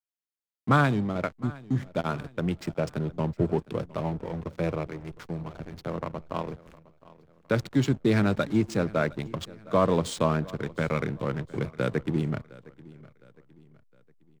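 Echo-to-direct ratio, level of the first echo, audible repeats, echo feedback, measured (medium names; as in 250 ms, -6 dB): -20.0 dB, -21.0 dB, 2, 42%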